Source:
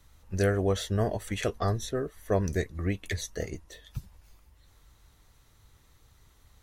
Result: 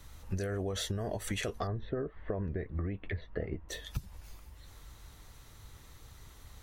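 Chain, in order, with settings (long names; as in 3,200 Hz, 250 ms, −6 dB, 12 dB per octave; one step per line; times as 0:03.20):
brickwall limiter −23.5 dBFS, peak gain reduction 10.5 dB
downward compressor 12 to 1, threshold −38 dBFS, peak gain reduction 11 dB
0:01.67–0:03.69: Gaussian smoothing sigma 3.7 samples
level +7 dB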